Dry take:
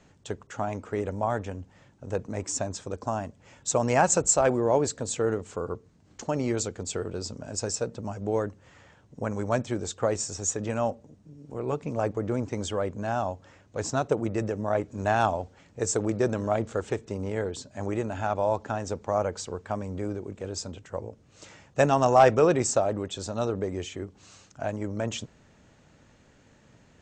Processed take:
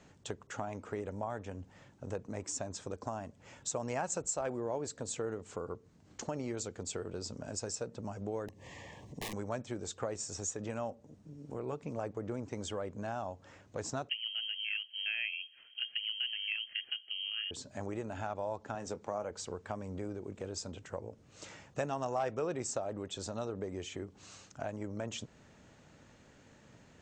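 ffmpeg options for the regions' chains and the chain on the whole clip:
ffmpeg -i in.wav -filter_complex "[0:a]asettb=1/sr,asplit=3[link_01][link_02][link_03];[link_01]atrim=end=8.484[link_04];[link_02]atrim=start=8.48:end=9.33,asetpts=PTS-STARTPTS,afade=type=in:duration=0.004:curve=qsin,afade=type=out:start_time=0.846:duration=0.004:curve=qsin,acompressor=mode=upward:threshold=-38dB:ratio=2.5:attack=3.2:release=140:knee=2.83:detection=peak,aeval=exprs='(mod(28.2*val(0)+1,2)-1)/28.2':channel_layout=same,asuperstop=centerf=1400:order=8:qfactor=2.7[link_05];[link_03]atrim=start=9.326[link_06];[link_04][link_05]acrossfade=duration=0.004:curve1=hsin:curve2=qsin[link_07];[link_07][link_06]acrossfade=duration=0.004:curve1=qsin:curve2=hsin,asettb=1/sr,asplit=3[link_08][link_09][link_10];[link_08]atrim=end=14.094[link_11];[link_09]atrim=start=14.09:end=17.51,asetpts=PTS-STARTPTS,afade=type=in:duration=0.004:curve=qsin,afade=type=out:start_time=3.416:duration=0.004:curve=qsin,equalizer=frequency=2300:width_type=o:width=0.44:gain=-15,lowpass=frequency=2800:width_type=q:width=0.5098,lowpass=frequency=2800:width_type=q:width=0.6013,lowpass=frequency=2800:width_type=q:width=0.9,lowpass=frequency=2800:width_type=q:width=2.563,afreqshift=-3300[link_12];[link_10]atrim=start=17.506[link_13];[link_11][link_12]acrossfade=duration=0.004:curve1=hsin:curve2=qsin[link_14];[link_14][link_13]acrossfade=duration=0.004:curve1=qsin:curve2=hsin,asettb=1/sr,asplit=3[link_15][link_16][link_17];[link_15]atrim=end=18.754[link_18];[link_16]atrim=start=18.75:end=19.31,asetpts=PTS-STARTPTS,afade=type=in:duration=0.004:curve=qsin,afade=type=out:start_time=0.556:duration=0.004:curve=qsin,highpass=110,asplit=2[link_19][link_20];[link_20]adelay=24,volume=-13dB[link_21];[link_19][link_21]amix=inputs=2:normalize=0,atrim=end_sample=24696[link_22];[link_17]atrim=start=19.306[link_23];[link_18][link_22]acrossfade=duration=0.004:curve1=hsin:curve2=qsin[link_24];[link_24][link_23]acrossfade=duration=0.004:curve1=qsin:curve2=hsin,lowshelf=frequency=73:gain=-5.5,acompressor=threshold=-38dB:ratio=2.5,volume=-1dB" out.wav

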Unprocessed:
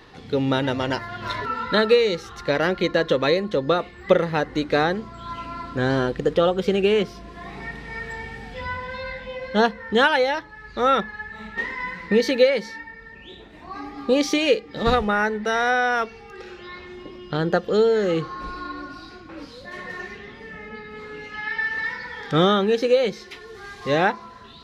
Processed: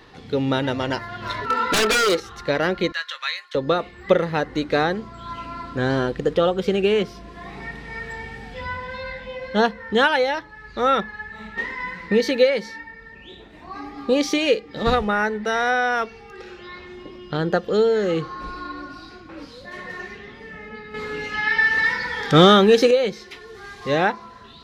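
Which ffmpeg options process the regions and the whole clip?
ffmpeg -i in.wav -filter_complex "[0:a]asettb=1/sr,asplit=3[link_01][link_02][link_03];[link_01]atrim=end=1.504[link_04];[link_02]atrim=start=1.5:end=2.2,asetpts=PTS-STARTPTS,afade=type=in:duration=0.004:curve=qsin,afade=type=out:start_time=0.696:duration=0.004:curve=qsin,lowshelf=frequency=220:width_type=q:width=1.5:gain=-10.5,aeval=exprs='0.106*(abs(mod(val(0)/0.106+3,4)-2)-1)':channel_layout=same,acontrast=65[link_05];[link_03]atrim=start=2.196[link_06];[link_04][link_05]acrossfade=duration=0.004:curve1=hsin:curve2=qsin[link_07];[link_07][link_06]acrossfade=duration=0.004:curve1=qsin:curve2=hsin,asettb=1/sr,asplit=3[link_08][link_09][link_10];[link_08]atrim=end=2.924[link_11];[link_09]atrim=start=2.92:end=3.55,asetpts=PTS-STARTPTS,afade=type=in:duration=0.004:curve=qsin,afade=type=out:start_time=0.626:duration=0.004:curve=qsin,highpass=frequency=1300:width=0.5412,highpass=frequency=1300:width=1.3066,asplit=2[link_12][link_13];[link_13]adelay=19,volume=-12.5dB[link_14];[link_12][link_14]amix=inputs=2:normalize=0,atrim=end_sample=27783[link_15];[link_10]atrim=start=3.546[link_16];[link_11][link_15]acrossfade=duration=0.004:curve1=hsin:curve2=qsin[link_17];[link_17][link_16]acrossfade=duration=0.004:curve1=qsin:curve2=hsin,asettb=1/sr,asplit=3[link_18][link_19][link_20];[link_18]atrim=end=20.944[link_21];[link_19]atrim=start=20.94:end=22.91,asetpts=PTS-STARTPTS,afade=type=in:duration=0.004:curve=qsin,afade=type=out:start_time=1.966:duration=0.004:curve=qsin,highshelf=frequency=5000:gain=6,acontrast=74[link_22];[link_20]atrim=start=22.906[link_23];[link_21][link_22]acrossfade=duration=0.004:curve1=hsin:curve2=qsin[link_24];[link_24][link_23]acrossfade=duration=0.004:curve1=qsin:curve2=hsin" out.wav

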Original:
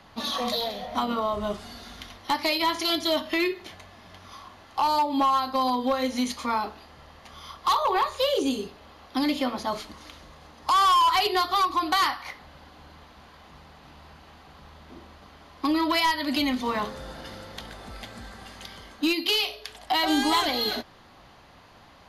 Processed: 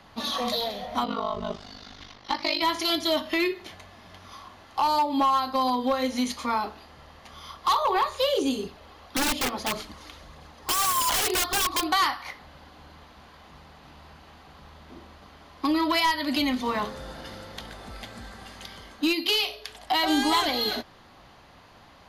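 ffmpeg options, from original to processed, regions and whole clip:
ffmpeg -i in.wav -filter_complex "[0:a]asettb=1/sr,asplit=3[link_01][link_02][link_03];[link_01]atrim=end=1.044[link_04];[link_02]atrim=start=1.04:end=2.62,asetpts=PTS-STARTPTS,afade=type=in:duration=0.004:curve=qsin,afade=type=out:start_time=1.576:duration=0.004:curve=qsin,highshelf=frequency=7300:width_type=q:width=1.5:gain=-11.5,aeval=exprs='val(0)*sin(2*PI*25*n/s)':channel_layout=same[link_05];[link_03]atrim=start=2.616[link_06];[link_04][link_05]acrossfade=duration=0.004:curve1=hsin:curve2=qsin[link_07];[link_07][link_06]acrossfade=duration=0.004:curve1=qsin:curve2=hsin,asettb=1/sr,asplit=3[link_08][link_09][link_10];[link_08]atrim=end=8.634[link_11];[link_09]atrim=start=8.63:end=11.87,asetpts=PTS-STARTPTS,afade=type=in:duration=0.004:curve=qsin,afade=type=out:start_time=3.236:duration=0.004:curve=qsin,aeval=exprs='(mod(10.6*val(0)+1,2)-1)/10.6':channel_layout=same,aphaser=in_gain=1:out_gain=1:delay=2.8:decay=0.33:speed=1.7:type=triangular[link_12];[link_10]atrim=start=11.866[link_13];[link_11][link_12]acrossfade=duration=0.004:curve1=hsin:curve2=qsin[link_14];[link_14][link_13]acrossfade=duration=0.004:curve1=qsin:curve2=hsin" out.wav

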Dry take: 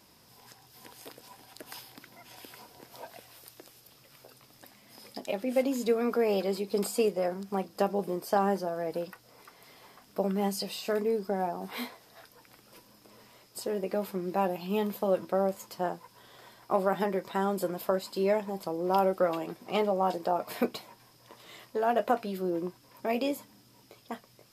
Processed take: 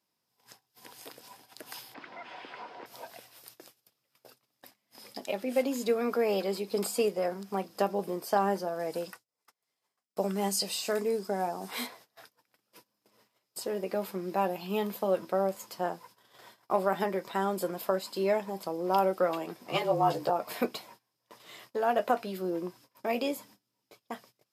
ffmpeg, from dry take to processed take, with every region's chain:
ffmpeg -i in.wav -filter_complex "[0:a]asettb=1/sr,asplit=3[link_01][link_02][link_03];[link_01]atrim=end=1.944[link_04];[link_02]atrim=start=1.94:end=2.86,asetpts=PTS-STARTPTS,afade=type=in:duration=0.004:curve=qsin,afade=type=out:start_time=0.916:duration=0.004:curve=qsin,asplit=2[link_05][link_06];[link_06]highpass=frequency=720:poles=1,volume=21dB,asoftclip=type=tanh:threshold=-30dB[link_07];[link_05][link_07]amix=inputs=2:normalize=0,lowpass=frequency=1700:poles=1,volume=-6dB,highpass=130,lowpass=3000[link_08];[link_03]atrim=start=2.856[link_09];[link_04][link_08]acrossfade=duration=0.004:curve1=hsin:curve2=qsin[link_10];[link_10][link_09]acrossfade=duration=0.004:curve1=qsin:curve2=hsin,asettb=1/sr,asplit=3[link_11][link_12][link_13];[link_11]atrim=end=8.794[link_14];[link_12]atrim=start=8.79:end=11.87,asetpts=PTS-STARTPTS,afade=type=in:duration=0.004:curve=qsin,afade=type=out:start_time=3.076:duration=0.004:curve=qsin,agate=range=-33dB:threshold=-48dB:ratio=3:release=100:detection=peak,equalizer=frequency=7900:width=0.89:gain=8.5[link_15];[link_13]atrim=start=11.866[link_16];[link_14][link_15]acrossfade=duration=0.004:curve1=hsin:curve2=qsin[link_17];[link_17][link_16]acrossfade=duration=0.004:curve1=qsin:curve2=hsin,asettb=1/sr,asplit=3[link_18][link_19][link_20];[link_18]atrim=end=19.674[link_21];[link_19]atrim=start=19.67:end=20.3,asetpts=PTS-STARTPTS,afade=type=in:duration=0.004:curve=qsin,afade=type=out:start_time=0.626:duration=0.004:curve=qsin,afreqshift=-33,asplit=2[link_22][link_23];[link_23]adelay=14,volume=-2dB[link_24];[link_22][link_24]amix=inputs=2:normalize=0,atrim=end_sample=27783[link_25];[link_20]atrim=start=20.296[link_26];[link_21][link_25]acrossfade=duration=0.004:curve1=hsin:curve2=qsin[link_27];[link_27][link_26]acrossfade=duration=0.004:curve1=qsin:curve2=hsin,agate=range=-22dB:threshold=-53dB:ratio=16:detection=peak,highpass=110,lowshelf=frequency=460:gain=-4,volume=1dB" out.wav

